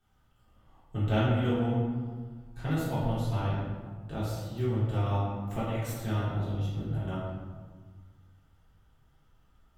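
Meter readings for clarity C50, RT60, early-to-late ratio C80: -1.0 dB, 1.6 s, 1.5 dB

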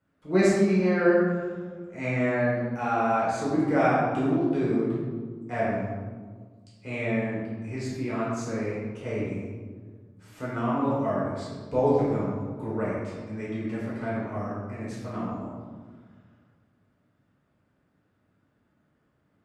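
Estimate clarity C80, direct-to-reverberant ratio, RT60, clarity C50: 1.0 dB, -8.5 dB, 1.6 s, -1.5 dB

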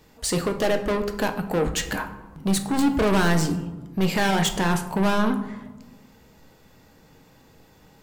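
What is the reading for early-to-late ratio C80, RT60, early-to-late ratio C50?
13.5 dB, 1.2 s, 11.0 dB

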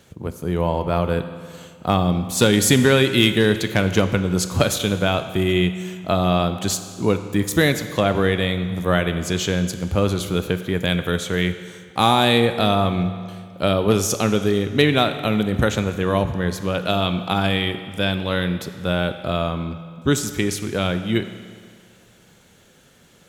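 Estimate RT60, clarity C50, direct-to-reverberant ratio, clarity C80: 2.0 s, 10.5 dB, 9.0 dB, 11.5 dB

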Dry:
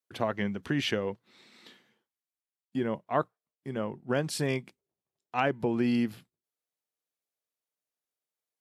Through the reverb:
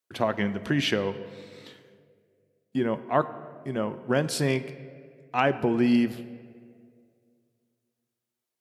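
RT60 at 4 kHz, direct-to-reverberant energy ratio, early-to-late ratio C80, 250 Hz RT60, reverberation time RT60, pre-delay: 1.2 s, 11.5 dB, 15.0 dB, 2.3 s, 2.1 s, 3 ms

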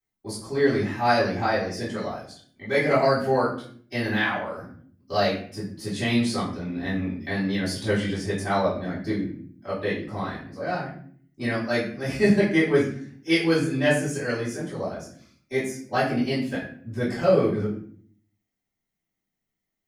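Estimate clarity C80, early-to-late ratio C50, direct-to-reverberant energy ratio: 9.5 dB, 5.5 dB, -11.5 dB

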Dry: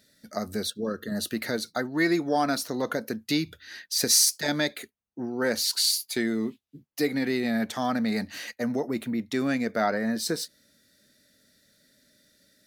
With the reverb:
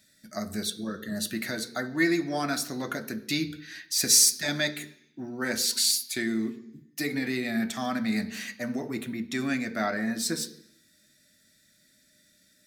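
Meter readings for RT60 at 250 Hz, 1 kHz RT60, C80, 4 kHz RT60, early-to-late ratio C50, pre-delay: 0.95 s, 0.65 s, 18.0 dB, 0.85 s, 15.0 dB, 3 ms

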